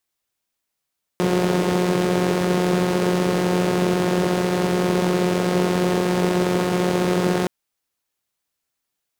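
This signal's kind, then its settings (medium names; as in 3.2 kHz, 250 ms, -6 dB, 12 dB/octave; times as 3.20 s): four-cylinder engine model, steady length 6.27 s, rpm 5400, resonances 190/370 Hz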